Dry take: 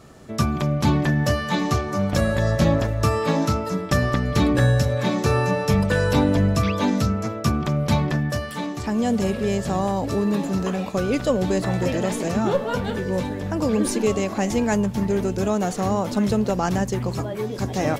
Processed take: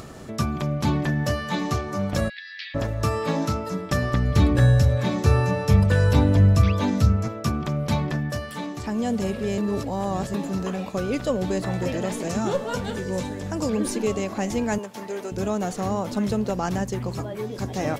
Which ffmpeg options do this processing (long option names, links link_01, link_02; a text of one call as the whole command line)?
ffmpeg -i in.wav -filter_complex "[0:a]asplit=3[link_01][link_02][link_03];[link_01]afade=type=out:start_time=2.28:duration=0.02[link_04];[link_02]asuperpass=centerf=2900:order=12:qfactor=0.94,afade=type=in:start_time=2.28:duration=0.02,afade=type=out:start_time=2.74:duration=0.02[link_05];[link_03]afade=type=in:start_time=2.74:duration=0.02[link_06];[link_04][link_05][link_06]amix=inputs=3:normalize=0,asettb=1/sr,asplit=3[link_07][link_08][link_09];[link_07]atrim=end=4.134[link_10];[link_08]atrim=start=4.13:end=7.28,asetpts=PTS-STARTPTS,afade=type=in:duration=0.004:curve=qsin,afade=type=out:start_time=3.146:duration=0.004:curve=qsin,equalizer=frequency=81:width=1.5:gain=13.5[link_11];[link_09]atrim=start=7.276[link_12];[link_10][link_11]acrossfade=duration=0.004:curve1=hsin:curve2=qsin[link_13];[link_13][link_12]acrossfade=duration=0.004:curve1=qsin:curve2=hsin,asettb=1/sr,asplit=3[link_14][link_15][link_16];[link_14]atrim=end=12.294[link_17];[link_15]atrim=start=12.29:end=13.7,asetpts=PTS-STARTPTS,afade=type=in:duration=0.004:curve=qsin,afade=type=out:start_time=1.406:duration=0.004:curve=qsin,equalizer=frequency=7300:width=0.99:gain=9[link_18];[link_16]atrim=start=13.696[link_19];[link_17][link_18]acrossfade=duration=0.004:curve1=hsin:curve2=qsin[link_20];[link_20][link_19]acrossfade=duration=0.004:curve1=qsin:curve2=hsin,asettb=1/sr,asplit=3[link_21][link_22][link_23];[link_21]atrim=end=14.784[link_24];[link_22]atrim=start=14.78:end=15.32,asetpts=PTS-STARTPTS,afade=type=in:duration=0.004:curve=qsin,afade=type=out:start_time=0.536:duration=0.004:curve=qsin,highpass=450[link_25];[link_23]atrim=start=15.316[link_26];[link_24][link_25]acrossfade=duration=0.004:curve1=hsin:curve2=qsin[link_27];[link_27][link_26]acrossfade=duration=0.004:curve1=qsin:curve2=hsin,asplit=3[link_28][link_29][link_30];[link_28]atrim=end=9.582[link_31];[link_29]atrim=start=9.578:end=10.342,asetpts=PTS-STARTPTS,areverse[link_32];[link_30]atrim=start=10.338[link_33];[link_31][link_32]acrossfade=duration=0.004:curve1=hsin:curve2=hsin[link_34];[link_34][link_33]acrossfade=duration=0.004:curve1=hsin:curve2=hsin,acompressor=mode=upward:threshold=-27dB:ratio=2.5,volume=-3.5dB" out.wav